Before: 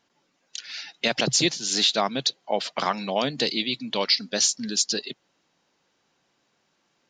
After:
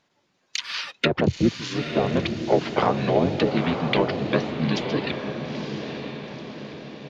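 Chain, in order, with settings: sample leveller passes 1; treble ducked by the level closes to 590 Hz, closed at -16 dBFS; harmoniser -7 st 0 dB; on a send: diffused feedback echo 0.93 s, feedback 52%, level -6.5 dB

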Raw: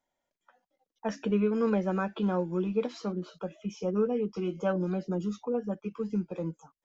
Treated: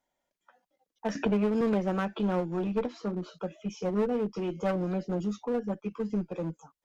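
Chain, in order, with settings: 2.79–3.22 high shelf 2200 Hz -8 dB; one-sided clip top -30.5 dBFS; 1.15–1.61 three-band squash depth 70%; gain +1.5 dB

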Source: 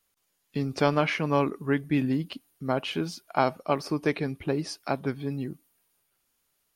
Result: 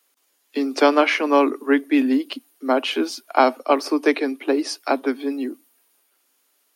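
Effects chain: steep high-pass 240 Hz 96 dB/oct; gain +8.5 dB

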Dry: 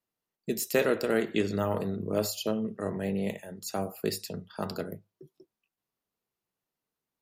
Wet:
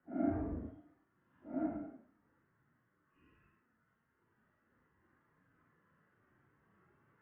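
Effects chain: minimum comb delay 0.62 ms; recorder AGC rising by 8.6 dB/s; Paulstretch 7.1×, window 0.05 s, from 5.18; mistuned SSB -80 Hz 170–2100 Hz; gain +10.5 dB

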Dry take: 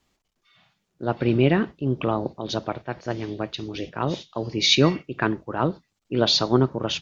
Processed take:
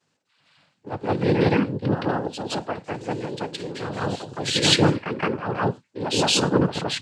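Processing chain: noise vocoder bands 8; reverse echo 0.168 s -6 dB

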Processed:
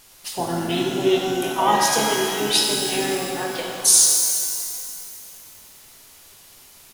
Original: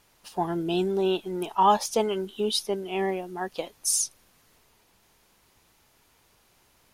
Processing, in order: harmoniser -7 st -11 dB, -5 st -9 dB; in parallel at +1 dB: compressor, threshold -39 dBFS, peak gain reduction 22 dB; on the sum: high shelf 3100 Hz +12 dB; shimmer reverb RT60 2.5 s, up +12 st, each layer -8 dB, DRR -1 dB; gain -3 dB

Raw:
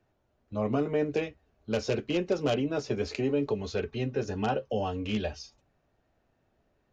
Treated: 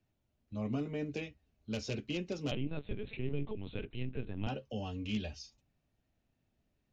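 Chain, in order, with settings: 2.51–4.47 LPC vocoder at 8 kHz pitch kept; band shelf 790 Hz -8.5 dB 2.6 oct; gain -4.5 dB

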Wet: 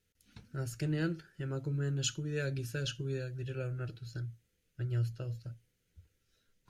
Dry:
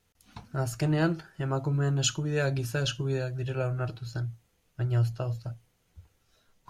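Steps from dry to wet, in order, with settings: band shelf 870 Hz -13 dB 1.1 oct; gain -7 dB

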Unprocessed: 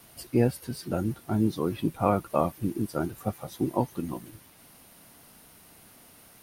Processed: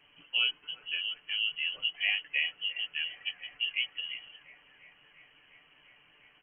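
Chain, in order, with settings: on a send: thin delay 0.35 s, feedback 82%, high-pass 1400 Hz, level -12 dB; on the sum: inverted band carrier 3100 Hz; comb 6.8 ms, depth 51%; gain -6.5 dB

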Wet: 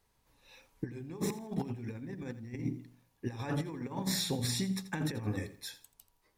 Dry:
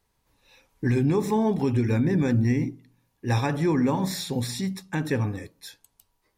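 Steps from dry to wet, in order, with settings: notches 50/100/150/200/250/300/350/400 Hz; negative-ratio compressor -29 dBFS, ratio -0.5; lo-fi delay 84 ms, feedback 35%, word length 9-bit, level -15 dB; gain -6.5 dB

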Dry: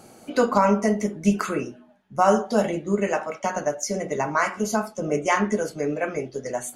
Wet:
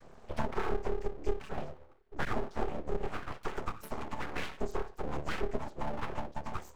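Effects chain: chord vocoder major triad, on D3; 3.7–4.61 bell 230 Hz -11.5 dB 1.3 oct; compressor 2.5:1, threshold -31 dBFS, peak gain reduction 14 dB; 2.25–2.69 dispersion lows, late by 45 ms, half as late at 660 Hz; full-wave rectifier

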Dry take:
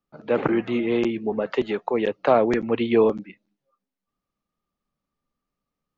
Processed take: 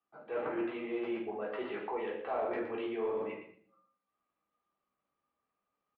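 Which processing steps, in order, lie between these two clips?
feedback echo 0.118 s, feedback 18%, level -10 dB; reverse; compressor 5:1, threshold -32 dBFS, peak gain reduction 17.5 dB; reverse; HPF 73 Hz; three-band isolator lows -18 dB, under 440 Hz, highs -14 dB, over 3300 Hz; shoebox room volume 350 m³, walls furnished, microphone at 3.6 m; in parallel at -5 dB: soft clip -26.5 dBFS, distortion -16 dB; on the sum: LPF 4200 Hz 24 dB/oct; low shelf 270 Hz +5.5 dB; gain -8.5 dB

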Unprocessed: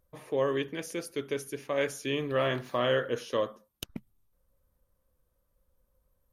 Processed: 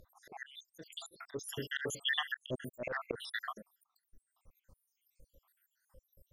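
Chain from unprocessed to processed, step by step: random spectral dropouts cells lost 81%; sine folder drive 6 dB, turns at -17 dBFS; auto swell 0.364 s; gain +3.5 dB

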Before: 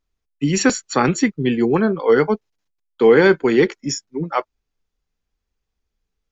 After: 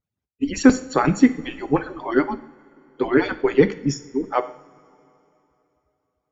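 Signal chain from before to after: median-filter separation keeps percussive; tilt -2.5 dB/oct; two-slope reverb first 0.59 s, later 3.2 s, from -19 dB, DRR 10.5 dB; gain -1.5 dB

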